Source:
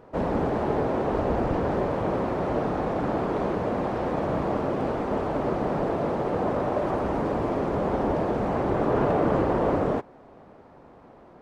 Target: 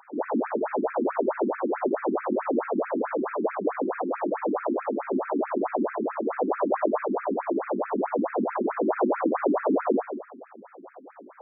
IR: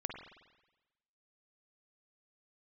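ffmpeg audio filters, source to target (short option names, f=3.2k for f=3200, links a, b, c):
-filter_complex "[0:a]asplit=2[a][b];[b]acompressor=threshold=-36dB:ratio=6,volume=1.5dB[c];[a][c]amix=inputs=2:normalize=0,asettb=1/sr,asplit=3[d][e][f];[d]atrim=end=6.514[g];[e]atrim=start=6.51:end=7.01,asetpts=PTS-STARTPTS,afade=t=in:d=0.004:c=qsin,afade=t=out:st=0.496:d=0.004:c=qsin,asplit=2[h][i];[i]adelay=18,volume=-4dB[j];[h][j]amix=inputs=2:normalize=0,atrim=end_sample=22050[k];[f]atrim=start=7.006[l];[g][k]acrossfade=d=0.004:c1=hsin:c2=qsin[m];[m][l]acrossfade=d=0.004:c1=qsin:c2=hsin[n];[1:a]atrim=start_sample=2205,afade=t=out:st=0.45:d=0.01,atrim=end_sample=20286[o];[n][o]afir=irnorm=-1:irlink=0,afftfilt=real='re*between(b*sr/1024,250*pow(1900/250,0.5+0.5*sin(2*PI*4.6*pts/sr))/1.41,250*pow(1900/250,0.5+0.5*sin(2*PI*4.6*pts/sr))*1.41)':imag='im*between(b*sr/1024,250*pow(1900/250,0.5+0.5*sin(2*PI*4.6*pts/sr))/1.41,250*pow(1900/250,0.5+0.5*sin(2*PI*4.6*pts/sr))*1.41)':win_size=1024:overlap=0.75,volume=3.5dB"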